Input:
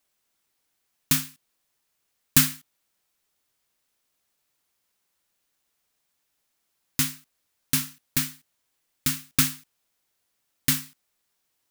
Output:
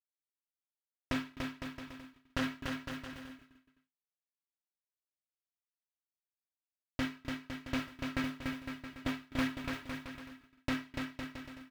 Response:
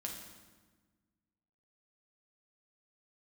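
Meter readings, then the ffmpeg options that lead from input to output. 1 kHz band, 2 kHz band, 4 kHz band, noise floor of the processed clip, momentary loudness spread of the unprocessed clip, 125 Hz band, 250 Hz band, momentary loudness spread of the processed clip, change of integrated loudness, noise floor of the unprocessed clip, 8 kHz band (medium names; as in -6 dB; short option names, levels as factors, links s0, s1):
-1.5 dB, -5.0 dB, -13.0 dB, under -85 dBFS, 12 LU, -10.0 dB, -2.5 dB, 12 LU, -15.0 dB, -76 dBFS, -27.5 dB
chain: -filter_complex "[0:a]aeval=exprs='if(lt(val(0),0),0.251*val(0),val(0))':c=same,lowpass=2700,aemphasis=mode=reproduction:type=75fm,aecho=1:1:3.1:0.7,asplit=2[s0][s1];[s1]aecho=0:1:257|514:0.0668|0.0241[s2];[s0][s2]amix=inputs=2:normalize=0,agate=range=0.0224:threshold=0.00251:ratio=3:detection=peak,volume=16.8,asoftclip=hard,volume=0.0596,asplit=2[s3][s4];[s4]aecho=0:1:290|507.5|670.6|793|884.7:0.631|0.398|0.251|0.158|0.1[s5];[s3][s5]amix=inputs=2:normalize=0,acrusher=bits=8:mode=log:mix=0:aa=0.000001,highpass=45,volume=1.26"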